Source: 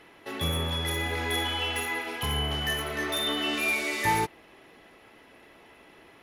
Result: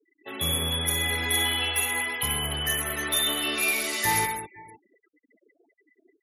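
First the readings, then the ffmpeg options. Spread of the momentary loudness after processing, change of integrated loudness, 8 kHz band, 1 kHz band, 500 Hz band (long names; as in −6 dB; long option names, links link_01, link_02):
5 LU, +3.0 dB, +10.5 dB, 0.0 dB, −1.5 dB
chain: -af "aecho=1:1:59|72|101|129|206|510:0.133|0.15|0.211|0.282|0.335|0.1,afftfilt=real='re*gte(hypot(re,im),0.0112)':imag='im*gte(hypot(re,im),0.0112)':win_size=1024:overlap=0.75,crystalizer=i=3:c=0,volume=-2.5dB"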